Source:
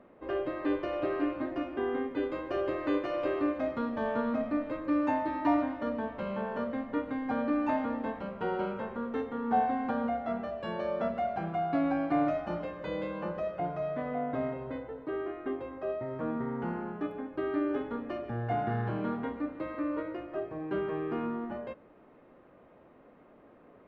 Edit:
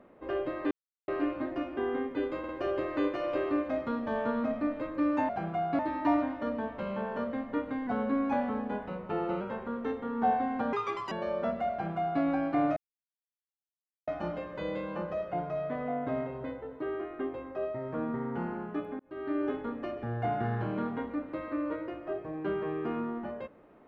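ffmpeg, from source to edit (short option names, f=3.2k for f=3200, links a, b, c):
-filter_complex "[0:a]asplit=13[a][b][c][d][e][f][g][h][i][j][k][l][m];[a]atrim=end=0.71,asetpts=PTS-STARTPTS,afade=t=out:st=0.706:d=0.004:c=hsin[n];[b]atrim=start=0.71:end=1.08,asetpts=PTS-STARTPTS,volume=0[o];[c]atrim=start=1.08:end=2.442,asetpts=PTS-STARTPTS,afade=t=in:d=0.004:c=hsin[p];[d]atrim=start=2.388:end=2.442[q];[e]atrim=start=2.388:end=5.192[r];[f]atrim=start=11.288:end=11.792[s];[g]atrim=start=5.188:end=7.274[t];[h]atrim=start=7.27:end=8.7,asetpts=PTS-STARTPTS,asetrate=41013,aresample=44100[u];[i]atrim=start=8.696:end=10.024[v];[j]atrim=start=10.02:end=10.69,asetpts=PTS-STARTPTS,asetrate=76293,aresample=44100,atrim=end_sample=17079,asetpts=PTS-STARTPTS[w];[k]atrim=start=10.686:end=12.34,asetpts=PTS-STARTPTS,afade=t=out:st=1.65:d=0.004:c=hsin,apad=pad_dur=1.31[x];[l]atrim=start=12.34:end=17.26,asetpts=PTS-STARTPTS,afade=t=in:d=0.004:c=hsin,afade=t=out:st=4.916:d=0.004:c=hsin[y];[m]atrim=start=17.26,asetpts=PTS-STARTPTS,afade=t=in:d=0.42[z];[n][o][p]concat=n=3:v=0:a=1[aa];[aa][q]acrossfade=d=0.004:c1=hsin:c2=hsin[ab];[ab][r]acrossfade=d=0.004:c1=hsin:c2=hsin[ac];[ac][s]acrossfade=d=0.004:c1=hsin:c2=hsin[ad];[ad][t]acrossfade=d=0.004:c1=hsin:c2=hsin[ae];[ae][u]acrossfade=d=0.004:c1=hsin:c2=hsin[af];[af][v]acrossfade=d=0.004:c1=hsin:c2=hsin[ag];[ag][w]acrossfade=d=0.004:c1=hsin:c2=hsin[ah];[x][y][z]concat=n=3:v=0:a=1[ai];[ah][ai]acrossfade=d=0.004:c1=hsin:c2=hsin"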